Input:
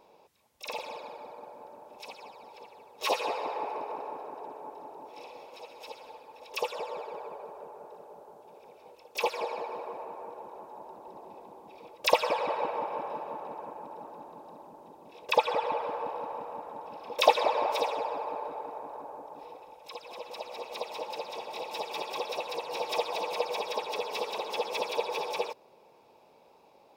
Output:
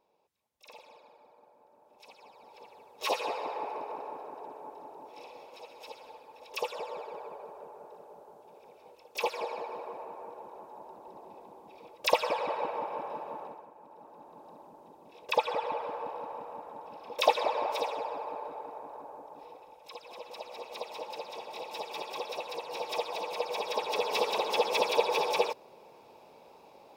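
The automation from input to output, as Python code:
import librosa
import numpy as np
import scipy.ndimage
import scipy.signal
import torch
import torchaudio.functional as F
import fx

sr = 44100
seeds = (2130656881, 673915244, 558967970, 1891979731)

y = fx.gain(x, sr, db=fx.line((1.67, -14.5), (2.69, -2.0), (13.44, -2.0), (13.7, -12.0), (14.46, -3.0), (23.37, -3.0), (24.14, 4.5)))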